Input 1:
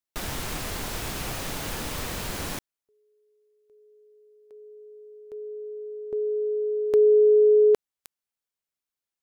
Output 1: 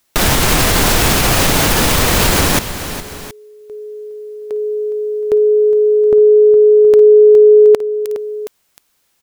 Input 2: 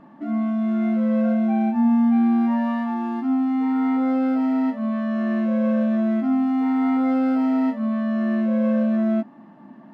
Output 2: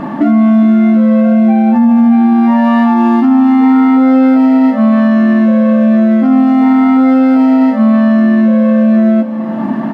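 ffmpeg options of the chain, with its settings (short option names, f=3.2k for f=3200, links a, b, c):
-filter_complex "[0:a]acompressor=threshold=-37dB:ratio=3:attack=33:release=353:knee=1:detection=rms,asplit=2[a][b];[b]aecho=0:1:55|413|721:0.106|0.2|0.112[c];[a][c]amix=inputs=2:normalize=0,alimiter=level_in=29dB:limit=-1dB:release=50:level=0:latency=1,volume=-1.5dB"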